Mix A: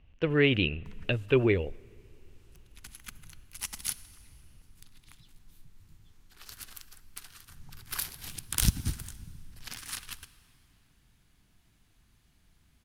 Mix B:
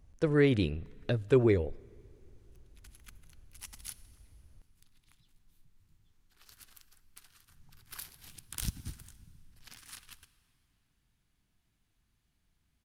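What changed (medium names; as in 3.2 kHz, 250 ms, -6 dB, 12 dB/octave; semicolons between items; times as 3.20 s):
speech: remove resonant low-pass 2.8 kHz, resonance Q 6.6; background -10.5 dB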